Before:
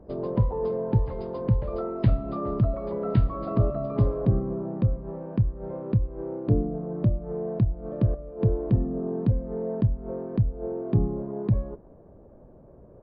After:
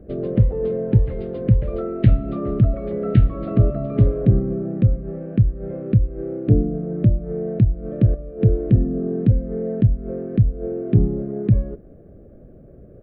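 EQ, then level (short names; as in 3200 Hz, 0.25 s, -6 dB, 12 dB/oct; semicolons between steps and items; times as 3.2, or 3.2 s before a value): fixed phaser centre 2300 Hz, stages 4; +7.5 dB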